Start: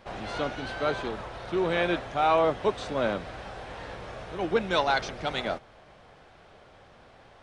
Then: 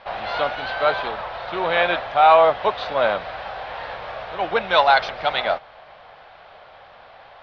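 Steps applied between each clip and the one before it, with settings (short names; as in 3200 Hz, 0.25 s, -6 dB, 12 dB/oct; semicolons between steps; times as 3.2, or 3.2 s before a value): steep low-pass 4600 Hz 36 dB/oct; resonant low shelf 470 Hz -11 dB, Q 1.5; gain +8.5 dB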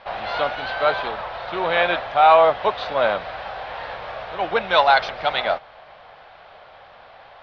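nothing audible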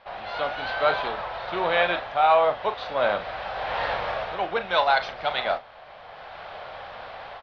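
AGC gain up to 14.5 dB; doubler 39 ms -11 dB; gain -8 dB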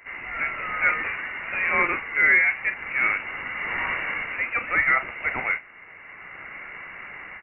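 pre-echo 0.1 s -17 dB; inverted band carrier 2800 Hz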